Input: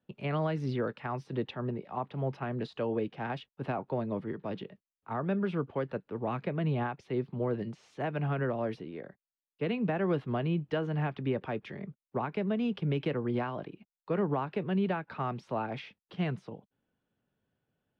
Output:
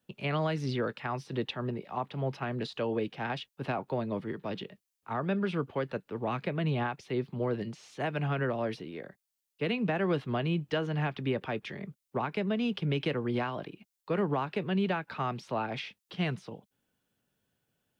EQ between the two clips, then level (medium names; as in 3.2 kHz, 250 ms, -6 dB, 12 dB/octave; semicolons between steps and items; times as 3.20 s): treble shelf 2.6 kHz +12 dB; 0.0 dB